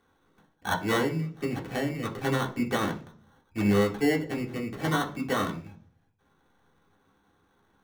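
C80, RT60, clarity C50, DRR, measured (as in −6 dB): 18.0 dB, 0.45 s, 13.0 dB, −1.0 dB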